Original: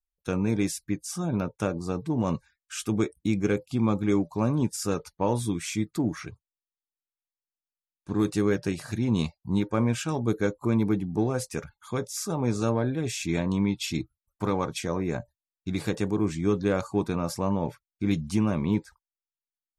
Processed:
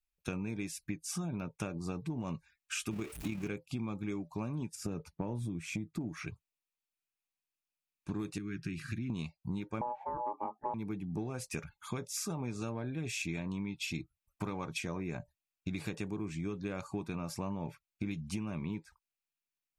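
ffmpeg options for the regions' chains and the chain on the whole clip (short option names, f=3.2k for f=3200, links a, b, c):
-filter_complex "[0:a]asettb=1/sr,asplit=3[a][b][c];[a]atrim=end=2.914[d];[b]atrim=start=2.91:end=3.48,asetpts=PTS-STARTPTS,afade=t=in:d=0.004:c=qsin,afade=t=out:st=0.566:d=0.004:c=qsin,aeval=exprs='val(0)+0.5*0.0251*sgn(val(0))':c=same,tremolo=f=36:d=0.462[e];[c]atrim=start=3.476[f];[d][e]acrossfade=d=0.004:c1=hsin:c2=qsin[g];[g][f]acrossfade=d=0.004:c1=qsin:c2=hsin,asettb=1/sr,asplit=3[h][i][j];[h]atrim=end=4.754[k];[i]atrim=start=4.75:end=6.01,asetpts=PTS-STARTPTS,afade=t=in:d=0.004:c=qsin,afade=t=out:st=1.256:d=0.004:c=qsin,highpass=58,tiltshelf=f=790:g=7.5,acompressor=threshold=-23dB:ratio=2.5:attack=3.2:release=140:knee=1:detection=peak[l];[j]atrim=start=6.006[m];[k][l]acrossfade=d=0.004:c1=hsin:c2=qsin[n];[n][m]acrossfade=d=0.004:c1=qsin:c2=hsin,asettb=1/sr,asplit=3[o][p][q];[o]atrim=end=8.384[r];[p]atrim=start=8.38:end=9.1,asetpts=PTS-STARTPTS,afade=t=in:d=0.004:c=qsin,afade=t=out:st=0.716:d=0.004:c=qsin,highshelf=f=4.1k:g=-11.5,acompressor=threshold=-30dB:ratio=2:attack=3.2:release=140:knee=1:detection=peak,asuperstop=centerf=680:order=8:qfactor=0.71[s];[q]atrim=start=9.096[t];[r][s]acrossfade=d=0.004:c1=hsin:c2=qsin[u];[u][t]acrossfade=d=0.004:c1=qsin:c2=hsin,asettb=1/sr,asplit=3[v][w][x];[v]atrim=end=9.814[y];[w]atrim=start=9.81:end=10.74,asetpts=PTS-STARTPTS,afade=t=in:d=0.004:c=qsin,afade=t=out:st=0.926:d=0.004:c=qsin,aeval=exprs='val(0)*sin(2*PI*730*n/s)':c=same,lowpass=f=790:t=q:w=8[z];[x]atrim=start=10.736[aa];[y][z]acrossfade=d=0.004:c1=hsin:c2=qsin[ab];[ab][aa]acrossfade=d=0.004:c1=qsin:c2=hsin,equalizer=f=160:t=o:w=0.33:g=4,equalizer=f=500:t=o:w=0.33:g=-5,equalizer=f=2.5k:t=o:w=0.33:g=9,acompressor=threshold=-34dB:ratio=12"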